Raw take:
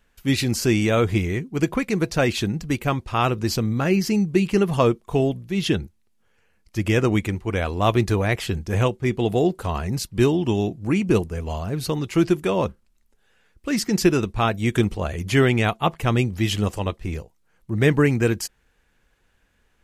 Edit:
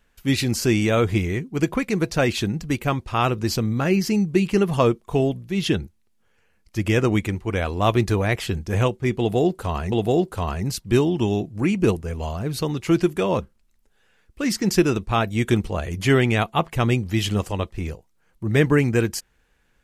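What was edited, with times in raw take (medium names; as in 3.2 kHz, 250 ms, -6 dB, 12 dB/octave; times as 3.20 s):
9.19–9.92 s: loop, 2 plays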